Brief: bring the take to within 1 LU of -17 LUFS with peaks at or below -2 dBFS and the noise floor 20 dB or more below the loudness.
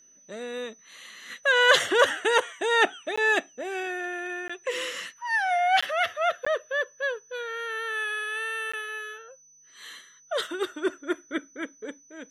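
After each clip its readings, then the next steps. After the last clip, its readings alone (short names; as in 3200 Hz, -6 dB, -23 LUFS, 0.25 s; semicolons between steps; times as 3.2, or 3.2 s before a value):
dropouts 5; longest dropout 15 ms; steady tone 6000 Hz; tone level -54 dBFS; loudness -26.5 LUFS; peak -6.0 dBFS; loudness target -17.0 LUFS
-> interpolate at 3.16/4.48/5.81/6.45/8.72, 15 ms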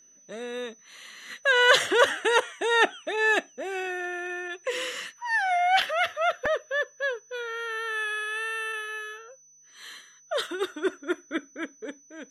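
dropouts 0; steady tone 6000 Hz; tone level -54 dBFS
-> notch 6000 Hz, Q 30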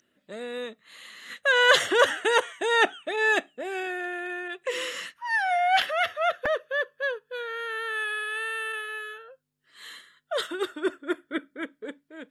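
steady tone none; loudness -26.0 LUFS; peak -6.0 dBFS; loudness target -17.0 LUFS
-> gain +9 dB; limiter -2 dBFS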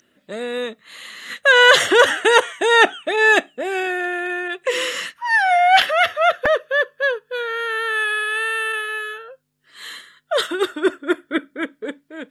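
loudness -17.5 LUFS; peak -2.0 dBFS; noise floor -64 dBFS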